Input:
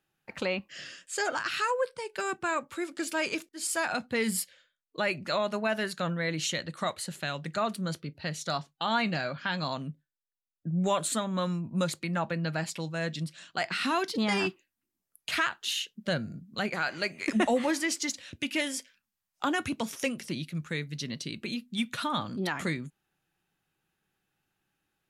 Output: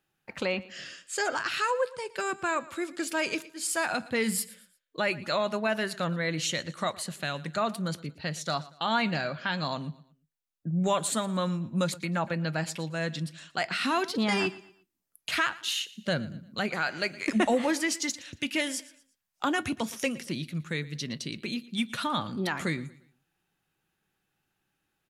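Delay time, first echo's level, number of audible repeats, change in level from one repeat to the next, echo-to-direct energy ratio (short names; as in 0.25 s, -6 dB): 0.116 s, -19.5 dB, 2, -9.0 dB, -19.0 dB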